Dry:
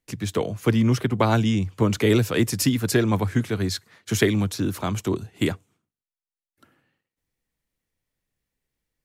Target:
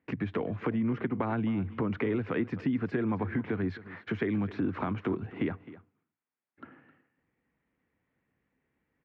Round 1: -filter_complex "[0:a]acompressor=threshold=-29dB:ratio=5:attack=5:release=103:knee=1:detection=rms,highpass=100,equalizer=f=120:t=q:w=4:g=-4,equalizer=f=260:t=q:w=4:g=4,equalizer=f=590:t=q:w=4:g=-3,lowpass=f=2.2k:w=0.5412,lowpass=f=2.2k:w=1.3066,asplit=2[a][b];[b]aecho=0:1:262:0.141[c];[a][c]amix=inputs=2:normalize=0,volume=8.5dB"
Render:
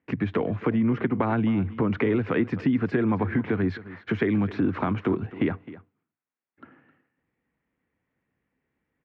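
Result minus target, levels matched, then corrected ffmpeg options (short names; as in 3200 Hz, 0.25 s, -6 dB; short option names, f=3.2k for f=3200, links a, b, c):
compressor: peak gain reduction -6.5 dB
-filter_complex "[0:a]acompressor=threshold=-37dB:ratio=5:attack=5:release=103:knee=1:detection=rms,highpass=100,equalizer=f=120:t=q:w=4:g=-4,equalizer=f=260:t=q:w=4:g=4,equalizer=f=590:t=q:w=4:g=-3,lowpass=f=2.2k:w=0.5412,lowpass=f=2.2k:w=1.3066,asplit=2[a][b];[b]aecho=0:1:262:0.141[c];[a][c]amix=inputs=2:normalize=0,volume=8.5dB"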